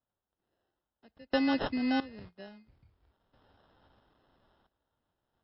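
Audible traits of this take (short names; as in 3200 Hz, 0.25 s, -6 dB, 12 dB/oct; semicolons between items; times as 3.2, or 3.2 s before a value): random-step tremolo 1.5 Hz, depth 95%; aliases and images of a low sample rate 2300 Hz, jitter 0%; MP3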